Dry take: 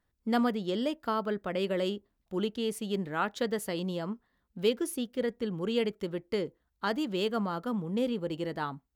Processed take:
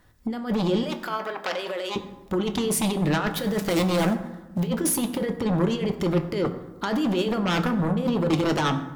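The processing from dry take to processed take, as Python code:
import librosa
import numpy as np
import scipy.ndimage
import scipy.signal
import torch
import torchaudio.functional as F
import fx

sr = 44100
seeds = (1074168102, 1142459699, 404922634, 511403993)

y = fx.dead_time(x, sr, dead_ms=0.076, at=(3.3, 4.6))
y = fx.over_compress(y, sr, threshold_db=-34.0, ratio=-0.5)
y = fx.fold_sine(y, sr, drive_db=11, ceiling_db=-20.0)
y = fx.highpass(y, sr, hz=640.0, slope=12, at=(0.83, 1.96))
y = fx.rev_fdn(y, sr, rt60_s=1.1, lf_ratio=1.3, hf_ratio=0.55, size_ms=55.0, drr_db=6.5)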